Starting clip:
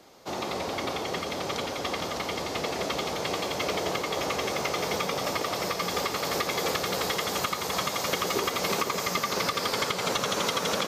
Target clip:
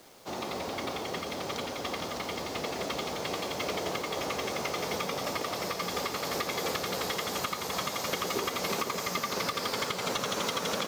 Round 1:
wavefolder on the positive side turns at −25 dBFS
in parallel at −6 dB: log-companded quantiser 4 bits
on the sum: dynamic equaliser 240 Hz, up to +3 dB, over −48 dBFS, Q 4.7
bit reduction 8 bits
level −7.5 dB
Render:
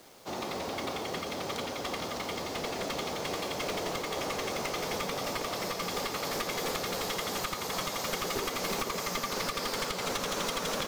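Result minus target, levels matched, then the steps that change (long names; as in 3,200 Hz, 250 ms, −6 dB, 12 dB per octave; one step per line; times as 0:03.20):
wavefolder on the positive side: distortion +28 dB
change: wavefolder on the positive side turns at −15.5 dBFS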